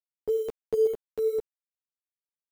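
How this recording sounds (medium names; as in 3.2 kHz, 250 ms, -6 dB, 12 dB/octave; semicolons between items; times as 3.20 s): random-step tremolo; a quantiser's noise floor 8-bit, dither none; a shimmering, thickened sound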